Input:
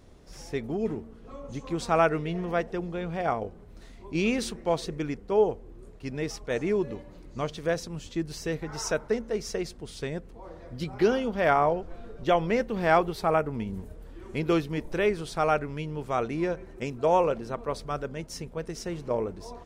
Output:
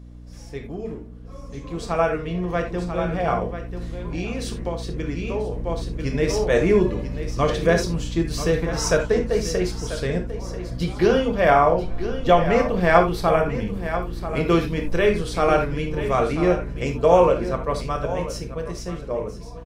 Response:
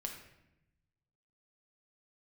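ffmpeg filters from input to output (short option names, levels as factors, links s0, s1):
-filter_complex "[0:a]aecho=1:1:989:0.282,asplit=3[s0][s1][s2];[s0]afade=t=out:st=3.46:d=0.02[s3];[s1]acompressor=threshold=0.0224:ratio=8,afade=t=in:st=3.46:d=0.02,afade=t=out:st=5.52:d=0.02[s4];[s2]afade=t=in:st=5.52:d=0.02[s5];[s3][s4][s5]amix=inputs=3:normalize=0[s6];[1:a]atrim=start_sample=2205,atrim=end_sample=3969[s7];[s6][s7]afir=irnorm=-1:irlink=0,aeval=exprs='val(0)+0.01*(sin(2*PI*60*n/s)+sin(2*PI*2*60*n/s)/2+sin(2*PI*3*60*n/s)/3+sin(2*PI*4*60*n/s)/4+sin(2*PI*5*60*n/s)/5)':c=same,dynaudnorm=f=260:g=21:m=3.76"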